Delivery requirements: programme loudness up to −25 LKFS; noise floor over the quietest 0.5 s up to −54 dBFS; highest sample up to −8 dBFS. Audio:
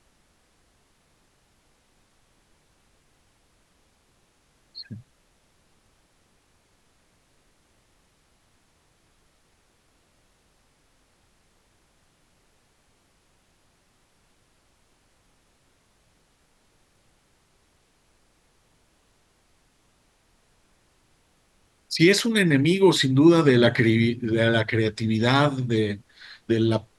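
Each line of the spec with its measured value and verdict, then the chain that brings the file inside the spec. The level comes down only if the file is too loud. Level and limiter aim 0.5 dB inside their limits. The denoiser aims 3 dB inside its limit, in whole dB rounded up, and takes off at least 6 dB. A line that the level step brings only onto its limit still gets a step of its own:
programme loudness −20.5 LKFS: out of spec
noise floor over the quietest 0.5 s −64 dBFS: in spec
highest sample −5.5 dBFS: out of spec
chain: level −5 dB

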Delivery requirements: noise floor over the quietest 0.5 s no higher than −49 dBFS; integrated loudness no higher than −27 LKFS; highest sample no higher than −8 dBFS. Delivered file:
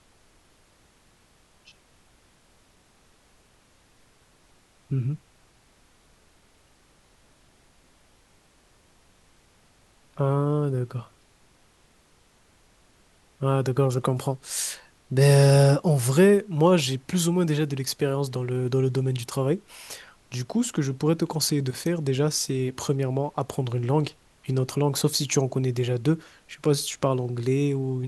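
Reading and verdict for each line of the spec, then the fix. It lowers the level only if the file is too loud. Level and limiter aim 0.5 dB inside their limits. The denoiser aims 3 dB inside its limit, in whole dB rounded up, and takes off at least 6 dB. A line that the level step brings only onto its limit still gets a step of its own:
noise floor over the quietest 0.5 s −60 dBFS: in spec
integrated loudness −24.5 LKFS: out of spec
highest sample −6.5 dBFS: out of spec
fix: level −3 dB

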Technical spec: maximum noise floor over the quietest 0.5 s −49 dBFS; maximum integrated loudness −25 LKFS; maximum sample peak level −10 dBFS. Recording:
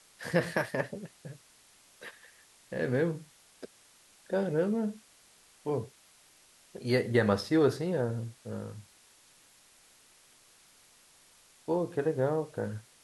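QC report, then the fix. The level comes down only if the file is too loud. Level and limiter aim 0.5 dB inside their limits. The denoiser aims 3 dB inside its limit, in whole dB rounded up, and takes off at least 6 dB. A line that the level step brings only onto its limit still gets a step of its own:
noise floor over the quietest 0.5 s −61 dBFS: in spec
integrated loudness −31.5 LKFS: in spec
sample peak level −12.5 dBFS: in spec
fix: no processing needed

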